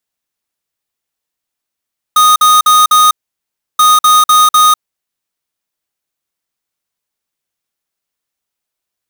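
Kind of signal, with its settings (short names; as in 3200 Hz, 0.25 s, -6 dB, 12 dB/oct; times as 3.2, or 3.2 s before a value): beep pattern square 1240 Hz, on 0.20 s, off 0.05 s, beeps 4, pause 0.68 s, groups 2, -6.5 dBFS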